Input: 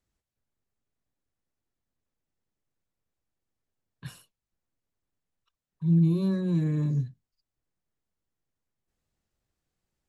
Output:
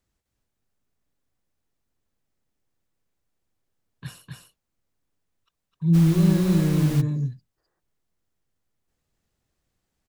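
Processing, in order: on a send: delay 256 ms -3 dB; 5.93–7.00 s: on the sum: added noise pink -40 dBFS; 7.57–7.80 s: time-frequency box 310–2000 Hz +12 dB; trim +4 dB

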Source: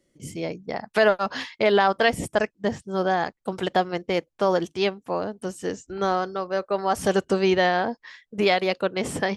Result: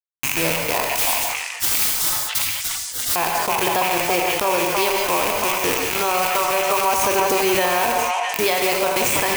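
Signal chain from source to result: rattle on loud lows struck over -39 dBFS, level -19 dBFS; graphic EQ with 31 bands 200 Hz -11 dB, 1 kHz +10 dB, 6.3 kHz +10 dB; bit crusher 5-bit; treble shelf 8.7 kHz +11 dB; 0.96–3.16 s: spectral gate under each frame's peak -30 dB weak; gated-style reverb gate 200 ms flat, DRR 5.5 dB; compression 10:1, threshold -27 dBFS, peak gain reduction 14 dB; repeats whose band climbs or falls 332 ms, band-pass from 930 Hz, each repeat 1.4 oct, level -1.5 dB; loudness maximiser +20 dB; decay stretcher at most 32 dB/s; trim -7.5 dB

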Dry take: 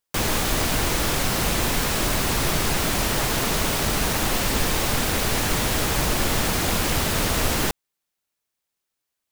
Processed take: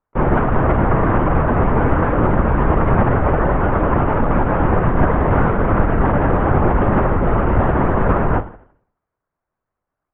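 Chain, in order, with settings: low-pass 1.5 kHz 24 dB/octave; in parallel at -0.5 dB: peak limiter -22.5 dBFS, peak gain reduction 10.5 dB; on the sum: plate-style reverb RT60 0.58 s, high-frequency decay 1×, DRR 11.5 dB; LPC vocoder at 8 kHz whisper; speed mistake 48 kHz file played as 44.1 kHz; trim +5.5 dB

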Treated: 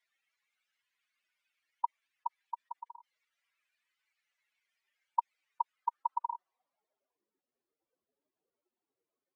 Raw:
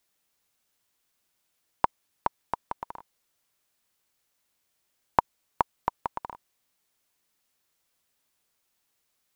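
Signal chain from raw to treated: spectral contrast enhancement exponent 3; band-pass sweep 2.1 kHz -> 380 Hz, 5.59–7.33 s; dynamic bell 360 Hz, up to +4 dB, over -58 dBFS, Q 1.2; trim +4.5 dB

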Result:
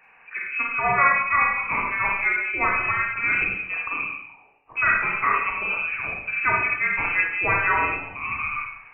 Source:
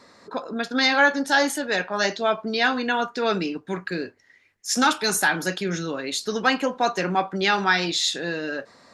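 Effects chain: de-hum 53 Hz, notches 28; frequency inversion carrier 2.8 kHz; Schroeder reverb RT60 0.77 s, combs from 32 ms, DRR -1.5 dB; trim -2.5 dB

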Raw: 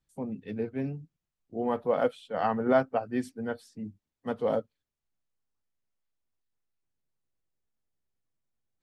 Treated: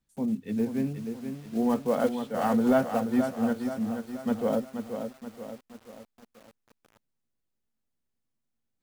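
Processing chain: block-companded coder 5-bit; peaking EQ 230 Hz +9.5 dB 0.41 oct; saturation -12 dBFS, distortion -24 dB; bit-crushed delay 479 ms, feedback 55%, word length 8-bit, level -7 dB

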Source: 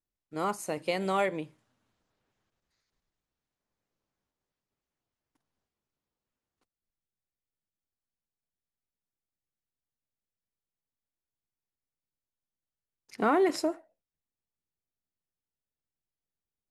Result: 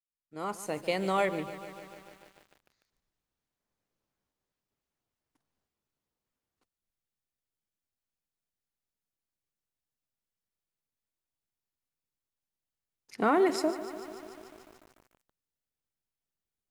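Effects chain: fade-in on the opening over 0.80 s; bit-crushed delay 147 ms, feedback 80%, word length 8-bit, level -14 dB

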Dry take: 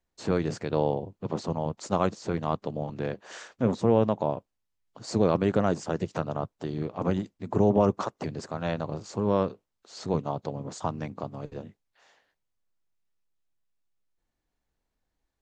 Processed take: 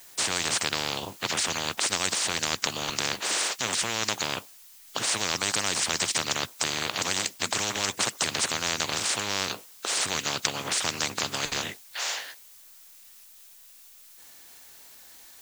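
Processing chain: tilt EQ +4.5 dB/octave; spectrum-flattening compressor 10:1; trim +6.5 dB

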